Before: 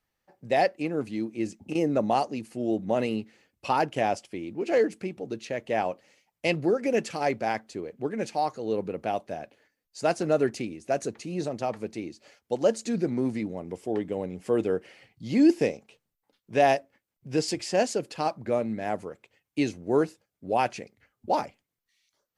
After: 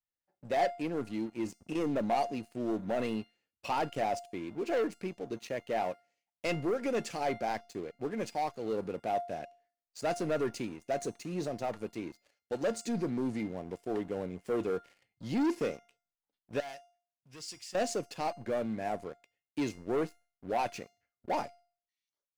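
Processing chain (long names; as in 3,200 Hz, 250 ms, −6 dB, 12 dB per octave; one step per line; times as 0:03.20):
leveller curve on the samples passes 3
0:16.60–0:17.75: guitar amp tone stack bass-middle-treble 5-5-5
tuned comb filter 700 Hz, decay 0.43 s, mix 70%
level −5 dB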